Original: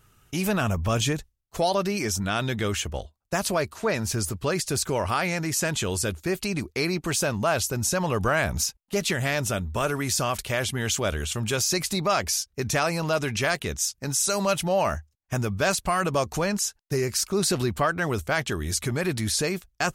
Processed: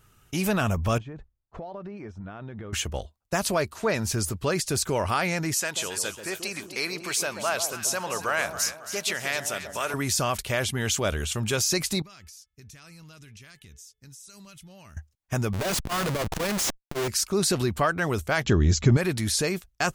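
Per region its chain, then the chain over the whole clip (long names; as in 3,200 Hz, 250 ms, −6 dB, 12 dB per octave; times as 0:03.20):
0:00.98–0:02.73: downward compressor 16 to 1, threshold −33 dBFS + low-pass filter 1,400 Hz
0:05.54–0:09.94: high-pass filter 920 Hz 6 dB per octave + delay that swaps between a low-pass and a high-pass 137 ms, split 1,000 Hz, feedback 65%, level −7 dB
0:12.02–0:14.97: guitar amp tone stack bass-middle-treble 6-0-2 + hum removal 433.2 Hz, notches 8 + downward compressor 5 to 1, threshold −44 dBFS
0:15.53–0:17.08: comparator with hysteresis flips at −37 dBFS + saturating transformer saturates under 130 Hz
0:18.44–0:18.97: linear-phase brick-wall low-pass 7,700 Hz + low-shelf EQ 480 Hz +11.5 dB
whole clip: no processing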